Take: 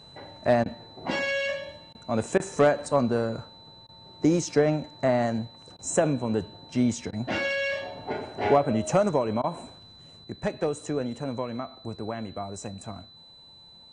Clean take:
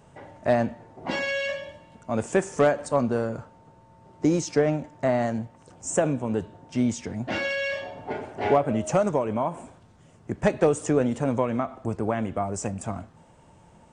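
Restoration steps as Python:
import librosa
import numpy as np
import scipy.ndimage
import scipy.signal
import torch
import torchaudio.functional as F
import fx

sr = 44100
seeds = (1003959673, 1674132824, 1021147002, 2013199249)

y = fx.notch(x, sr, hz=4000.0, q=30.0)
y = fx.fix_interpolate(y, sr, at_s=(0.64, 1.93, 2.38, 3.87, 5.77, 7.11, 9.42), length_ms=17.0)
y = fx.fix_level(y, sr, at_s=10.24, step_db=7.0)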